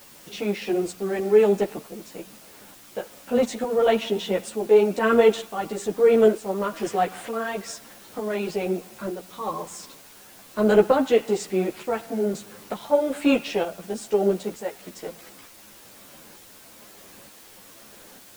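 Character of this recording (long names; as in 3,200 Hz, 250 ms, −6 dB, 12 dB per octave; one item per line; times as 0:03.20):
tremolo saw up 1.1 Hz, depth 60%
a quantiser's noise floor 8 bits, dither triangular
a shimmering, thickened sound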